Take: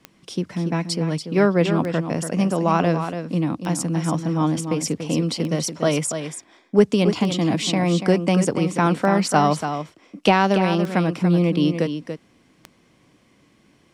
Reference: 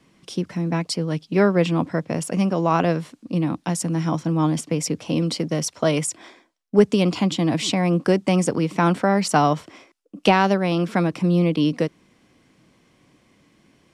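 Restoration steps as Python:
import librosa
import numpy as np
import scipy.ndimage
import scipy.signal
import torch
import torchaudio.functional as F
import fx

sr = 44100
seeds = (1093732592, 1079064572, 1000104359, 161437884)

y = fx.fix_declick_ar(x, sr, threshold=10.0)
y = fx.fix_echo_inverse(y, sr, delay_ms=286, level_db=-8.5)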